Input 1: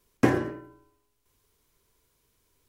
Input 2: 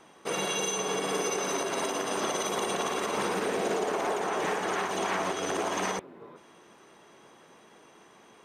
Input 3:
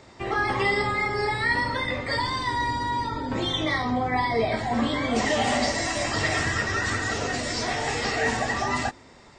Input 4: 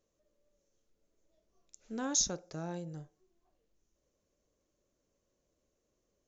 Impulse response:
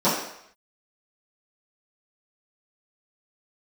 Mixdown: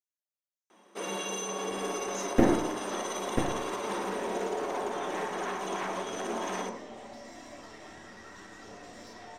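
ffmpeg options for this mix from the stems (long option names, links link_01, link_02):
-filter_complex "[0:a]equalizer=frequency=4000:width_type=o:width=2.3:gain=-9.5,aeval=exprs='max(val(0),0)':channel_layout=same,adelay=2150,volume=-1dB,asplit=3[link_01][link_02][link_03];[link_02]volume=-19dB[link_04];[link_03]volume=-3.5dB[link_05];[1:a]highpass=200,adelay=700,volume=-7dB,asplit=2[link_06][link_07];[link_07]volume=-22dB[link_08];[2:a]acompressor=threshold=-31dB:ratio=5,aeval=exprs='(tanh(31.6*val(0)+0.4)-tanh(0.4))/31.6':channel_layout=same,adelay=1500,volume=-16.5dB,asplit=3[link_09][link_10][link_11];[link_10]volume=-17dB[link_12];[link_11]volume=-5dB[link_13];[3:a]aderivative,volume=-14dB[link_14];[4:a]atrim=start_sample=2205[link_15];[link_04][link_08][link_12]amix=inputs=3:normalize=0[link_16];[link_16][link_15]afir=irnorm=-1:irlink=0[link_17];[link_05][link_13]amix=inputs=2:normalize=0,aecho=0:1:990:1[link_18];[link_01][link_06][link_09][link_14][link_17][link_18]amix=inputs=6:normalize=0"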